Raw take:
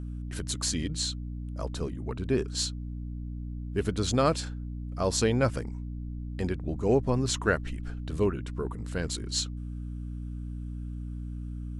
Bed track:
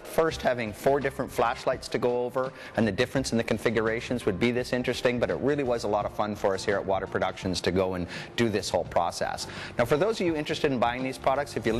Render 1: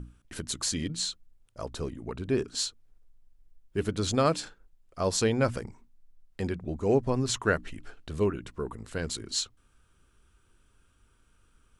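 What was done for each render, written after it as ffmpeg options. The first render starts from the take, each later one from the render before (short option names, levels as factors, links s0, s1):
-af "bandreject=f=60:t=h:w=6,bandreject=f=120:t=h:w=6,bandreject=f=180:t=h:w=6,bandreject=f=240:t=h:w=6,bandreject=f=300:t=h:w=6"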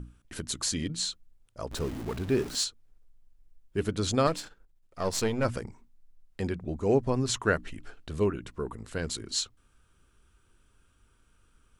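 -filter_complex "[0:a]asettb=1/sr,asplit=3[s0][s1][s2];[s0]atrim=end=1.714[s3];[s1]atrim=start=1.71:end=2.64,asetpts=PTS-STARTPTS,afade=t=in:d=0.004:c=qsin,afade=t=out:st=0.926:d=0.004:c=qsin,aeval=exprs='val(0)+0.5*0.015*sgn(val(0))':c=same[s4];[s2]atrim=start=2.636[s5];[s3][s4]acrossfade=d=0.004:c1=hsin:c2=qsin[s6];[s6][s5]acrossfade=d=0.004:c1=qsin:c2=hsin,asettb=1/sr,asplit=3[s7][s8][s9];[s7]atrim=end=4.274[s10];[s8]atrim=start=4.27:end=5.45,asetpts=PTS-STARTPTS,afade=t=in:d=0.004:c=qsin,afade=t=out:st=1.176:d=0.004:c=qsin,aeval=exprs='if(lt(val(0),0),0.447*val(0),val(0))':c=same[s11];[s9]atrim=start=5.446[s12];[s10][s11]acrossfade=d=0.004:c1=hsin:c2=qsin[s13];[s13][s12]acrossfade=d=0.004:c1=qsin:c2=hsin"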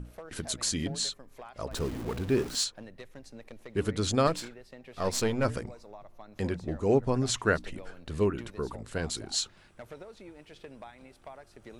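-filter_complex "[1:a]volume=0.0794[s0];[0:a][s0]amix=inputs=2:normalize=0"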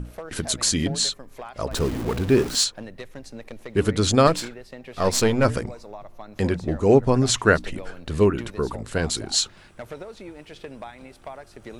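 -af "volume=2.66"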